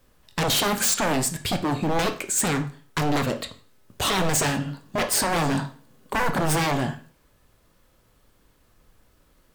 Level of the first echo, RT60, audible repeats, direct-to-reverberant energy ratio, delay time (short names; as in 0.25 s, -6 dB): none, 0.40 s, none, 7.0 dB, none